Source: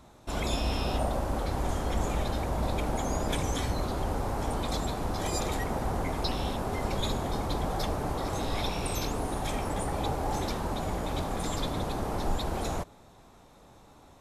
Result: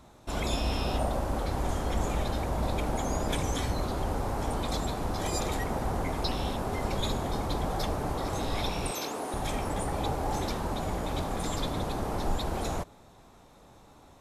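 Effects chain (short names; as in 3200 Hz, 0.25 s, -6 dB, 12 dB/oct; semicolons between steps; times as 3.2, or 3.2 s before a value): 8.91–9.34 HPF 300 Hz 12 dB/oct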